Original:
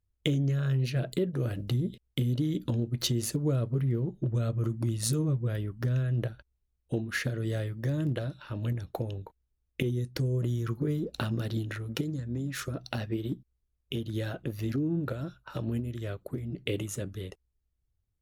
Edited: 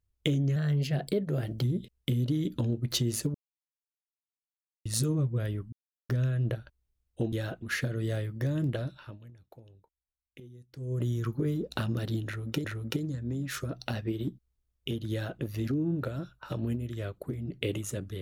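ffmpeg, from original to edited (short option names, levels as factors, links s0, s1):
-filter_complex "[0:a]asplit=11[s0][s1][s2][s3][s4][s5][s6][s7][s8][s9][s10];[s0]atrim=end=0.564[s11];[s1]atrim=start=0.56:end=1.72,asetpts=PTS-STARTPTS,asetrate=48069,aresample=44100,atrim=end_sample=46932,asetpts=PTS-STARTPTS[s12];[s2]atrim=start=1.716:end=3.44,asetpts=PTS-STARTPTS,afade=t=out:st=1.72:d=0.004:c=hsin[s13];[s3]atrim=start=3.44:end=4.95,asetpts=PTS-STARTPTS,volume=0[s14];[s4]atrim=start=4.95:end=5.82,asetpts=PTS-STARTPTS,afade=t=in:d=0.004:c=hsin,afade=t=out:st=0.866:d=0.004:c=hsin,apad=pad_dur=0.37[s15];[s5]atrim=start=5.82:end=7.052,asetpts=PTS-STARTPTS,afade=t=in:d=0.004:c=hsin[s16];[s6]atrim=start=14.148:end=14.452[s17];[s7]atrim=start=7.048:end=8.62,asetpts=PTS-STARTPTS,afade=t=out:st=1.302:d=0.27:silence=0.105925[s18];[s8]atrim=start=8.62:end=10.18,asetpts=PTS-STARTPTS,volume=0.106[s19];[s9]atrim=start=10.18:end=12.072,asetpts=PTS-STARTPTS,afade=t=in:d=0.27:silence=0.105925[s20];[s10]atrim=start=11.688[s21];[s11][s12]acrossfade=d=0.004:c1=hsin:c2=hsin[s22];[s13][s14][s15][s16]concat=n=4:v=0:a=1[s23];[s22][s23]acrossfade=d=0.004:c1=hsin:c2=hsin[s24];[s24][s17]acrossfade=d=0.004:c1=hsin:c2=hsin[s25];[s18][s19][s20]concat=n=3:v=0:a=1[s26];[s25][s26]acrossfade=d=0.004:c1=hsin:c2=hsin[s27];[s27][s21]acrossfade=d=0.004:c1=hsin:c2=hsin"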